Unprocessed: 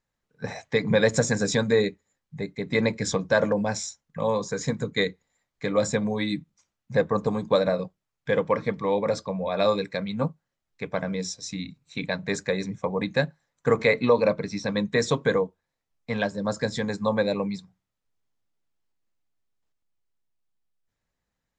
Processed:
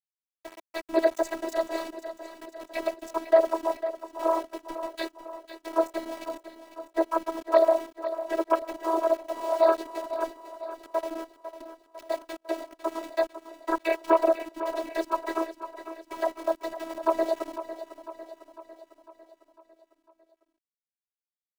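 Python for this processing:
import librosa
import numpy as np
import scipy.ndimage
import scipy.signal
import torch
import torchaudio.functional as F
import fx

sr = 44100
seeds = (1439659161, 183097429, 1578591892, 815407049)

y = fx.wiener(x, sr, points=41)
y = scipy.signal.sosfilt(scipy.signal.ellip(3, 1.0, 40, [210.0, 480.0], 'bandstop', fs=sr, output='sos'), y)
y = fx.band_shelf(y, sr, hz=820.0, db=15.0, octaves=1.3)
y = fx.vibrato(y, sr, rate_hz=10.0, depth_cents=22.0)
y = fx.noise_vocoder(y, sr, seeds[0], bands=16)
y = np.where(np.abs(y) >= 10.0 ** (-29.5 / 20.0), y, 0.0)
y = fx.robotise(y, sr, hz=327.0)
y = 10.0 ** (-2.5 / 20.0) * np.tanh(y / 10.0 ** (-2.5 / 20.0))
y = fx.low_shelf_res(y, sr, hz=230.0, db=-10.0, q=1.5)
y = fx.echo_feedback(y, sr, ms=501, feedback_pct=56, wet_db=-12.0)
y = y * librosa.db_to_amplitude(-6.0)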